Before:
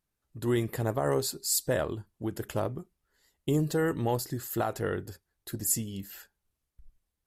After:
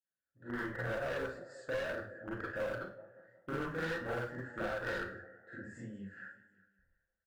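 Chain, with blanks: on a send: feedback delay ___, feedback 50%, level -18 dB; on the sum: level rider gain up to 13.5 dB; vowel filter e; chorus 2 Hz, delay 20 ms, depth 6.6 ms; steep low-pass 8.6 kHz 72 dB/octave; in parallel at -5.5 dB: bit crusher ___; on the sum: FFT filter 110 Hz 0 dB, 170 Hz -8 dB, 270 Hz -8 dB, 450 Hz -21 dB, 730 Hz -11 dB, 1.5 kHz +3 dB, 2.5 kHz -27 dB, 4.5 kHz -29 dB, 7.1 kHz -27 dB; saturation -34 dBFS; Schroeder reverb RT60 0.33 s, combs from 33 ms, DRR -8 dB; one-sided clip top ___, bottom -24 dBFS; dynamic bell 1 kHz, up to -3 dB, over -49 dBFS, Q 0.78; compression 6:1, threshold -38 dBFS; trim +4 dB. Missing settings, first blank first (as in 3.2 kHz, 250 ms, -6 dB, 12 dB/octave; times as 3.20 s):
182 ms, 5-bit, -31.5 dBFS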